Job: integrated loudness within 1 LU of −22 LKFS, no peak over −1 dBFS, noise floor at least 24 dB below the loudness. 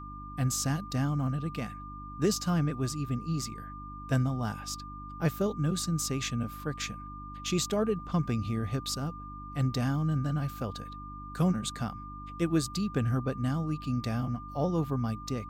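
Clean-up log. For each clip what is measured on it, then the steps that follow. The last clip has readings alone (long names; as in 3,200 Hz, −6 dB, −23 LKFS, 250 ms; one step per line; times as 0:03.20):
mains hum 50 Hz; hum harmonics up to 300 Hz; level of the hum −44 dBFS; interfering tone 1,200 Hz; level of the tone −43 dBFS; integrated loudness −31.5 LKFS; sample peak −16.5 dBFS; target loudness −22.0 LKFS
→ hum removal 50 Hz, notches 6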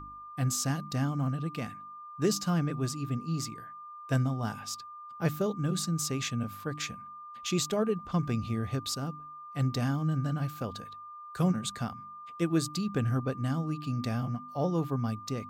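mains hum none found; interfering tone 1,200 Hz; level of the tone −43 dBFS
→ notch filter 1,200 Hz, Q 30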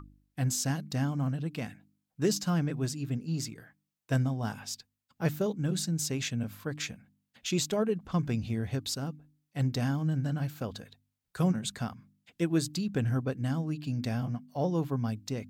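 interfering tone none found; integrated loudness −32.0 LKFS; sample peak −16.0 dBFS; target loudness −22.0 LKFS
→ level +10 dB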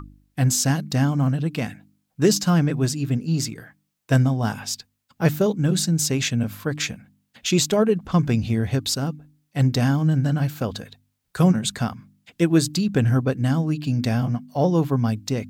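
integrated loudness −22.0 LKFS; sample peak −6.0 dBFS; background noise floor −74 dBFS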